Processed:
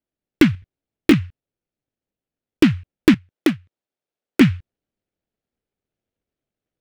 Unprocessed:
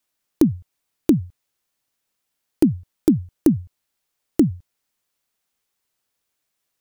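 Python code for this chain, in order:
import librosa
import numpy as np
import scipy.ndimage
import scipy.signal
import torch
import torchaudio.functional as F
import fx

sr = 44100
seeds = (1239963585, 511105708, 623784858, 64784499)

y = fx.wiener(x, sr, points=41)
y = fx.weighting(y, sr, curve='A', at=(3.14, 4.41))
y = fx.rider(y, sr, range_db=10, speed_s=0.5)
y = fx.doubler(y, sr, ms=18.0, db=-5.5, at=(0.53, 1.14))
y = fx.noise_mod_delay(y, sr, seeds[0], noise_hz=2000.0, depth_ms=0.13)
y = F.gain(torch.from_numpy(y), 4.0).numpy()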